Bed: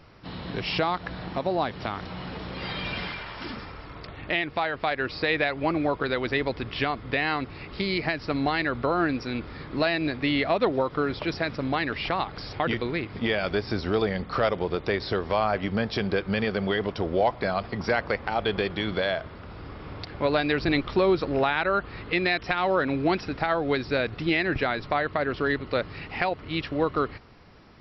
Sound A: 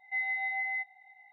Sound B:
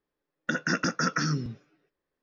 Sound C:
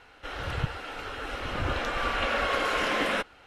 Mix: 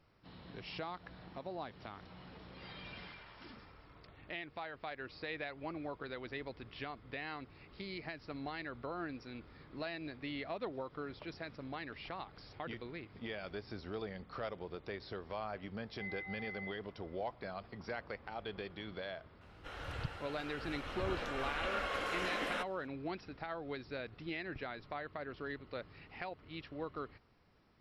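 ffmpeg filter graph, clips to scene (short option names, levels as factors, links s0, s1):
-filter_complex "[0:a]volume=0.133[s0];[1:a]atrim=end=1.32,asetpts=PTS-STARTPTS,volume=0.211,afade=t=in:d=0.004:c=hsin,afade=t=out:st=1.316:d=0.004:c=hsin,adelay=700308S[s1];[3:a]atrim=end=3.46,asetpts=PTS-STARTPTS,volume=0.282,afade=t=in:d=0.004:c=hsin,afade=t=out:st=3.456:d=0.004:c=hsin,adelay=19410[s2];[s0][s1][s2]amix=inputs=3:normalize=0"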